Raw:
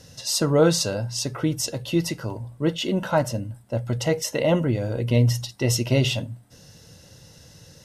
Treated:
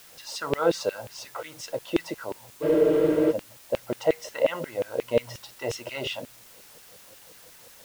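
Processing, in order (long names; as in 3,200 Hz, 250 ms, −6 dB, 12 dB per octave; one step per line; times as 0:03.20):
RIAA equalisation playback
auto-filter high-pass saw down 5.6 Hz 400–2,800 Hz
in parallel at −8 dB: bit-depth reduction 6 bits, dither triangular
on the sum: frozen spectrum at 0:02.65, 0.65 s
level −7 dB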